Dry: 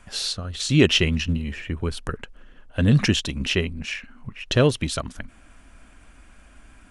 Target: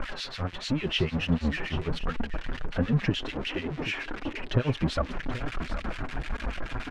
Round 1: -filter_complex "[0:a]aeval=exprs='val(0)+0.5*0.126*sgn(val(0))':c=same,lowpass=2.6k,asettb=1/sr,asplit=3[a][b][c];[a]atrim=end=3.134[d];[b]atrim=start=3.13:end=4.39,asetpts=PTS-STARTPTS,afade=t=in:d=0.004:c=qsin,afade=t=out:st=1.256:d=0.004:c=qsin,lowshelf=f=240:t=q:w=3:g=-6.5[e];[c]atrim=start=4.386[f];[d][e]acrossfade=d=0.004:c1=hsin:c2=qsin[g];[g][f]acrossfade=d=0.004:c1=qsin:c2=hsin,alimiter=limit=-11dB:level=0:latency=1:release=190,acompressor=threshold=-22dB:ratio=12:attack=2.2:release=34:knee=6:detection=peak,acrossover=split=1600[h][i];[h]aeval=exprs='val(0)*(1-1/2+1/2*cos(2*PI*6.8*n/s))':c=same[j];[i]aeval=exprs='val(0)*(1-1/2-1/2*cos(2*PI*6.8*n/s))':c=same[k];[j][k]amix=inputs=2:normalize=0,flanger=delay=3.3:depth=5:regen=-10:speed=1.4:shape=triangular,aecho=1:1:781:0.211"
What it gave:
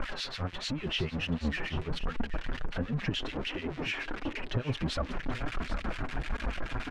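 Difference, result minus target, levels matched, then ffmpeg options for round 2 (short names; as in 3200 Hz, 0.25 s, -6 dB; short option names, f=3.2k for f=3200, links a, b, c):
compressor: peak gain reduction +9 dB
-filter_complex "[0:a]aeval=exprs='val(0)+0.5*0.126*sgn(val(0))':c=same,lowpass=2.6k,asettb=1/sr,asplit=3[a][b][c];[a]atrim=end=3.134[d];[b]atrim=start=3.13:end=4.39,asetpts=PTS-STARTPTS,afade=t=in:d=0.004:c=qsin,afade=t=out:st=1.256:d=0.004:c=qsin,lowshelf=f=240:t=q:w=3:g=-6.5[e];[c]atrim=start=4.386[f];[d][e]acrossfade=d=0.004:c1=hsin:c2=qsin[g];[g][f]acrossfade=d=0.004:c1=qsin:c2=hsin,alimiter=limit=-11dB:level=0:latency=1:release=190,acrossover=split=1600[h][i];[h]aeval=exprs='val(0)*(1-1/2+1/2*cos(2*PI*6.8*n/s))':c=same[j];[i]aeval=exprs='val(0)*(1-1/2-1/2*cos(2*PI*6.8*n/s))':c=same[k];[j][k]amix=inputs=2:normalize=0,flanger=delay=3.3:depth=5:regen=-10:speed=1.4:shape=triangular,aecho=1:1:781:0.211"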